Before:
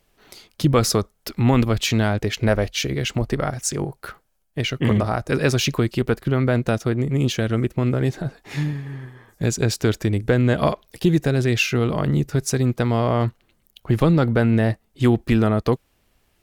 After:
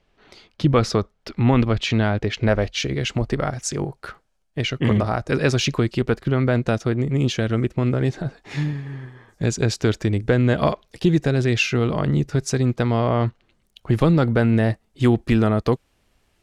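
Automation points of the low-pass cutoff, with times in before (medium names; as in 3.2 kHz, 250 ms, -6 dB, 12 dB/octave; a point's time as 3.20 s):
2.15 s 4 kHz
3.05 s 7.1 kHz
12.84 s 7.1 kHz
13.10 s 4.1 kHz
13.91 s 10 kHz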